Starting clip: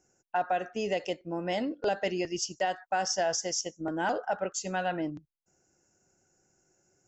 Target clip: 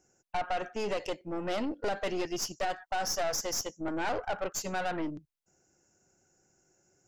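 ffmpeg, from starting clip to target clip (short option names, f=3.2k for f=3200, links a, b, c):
-af "aeval=exprs='(tanh(35.5*val(0)+0.6)-tanh(0.6))/35.5':c=same,volume=3.5dB"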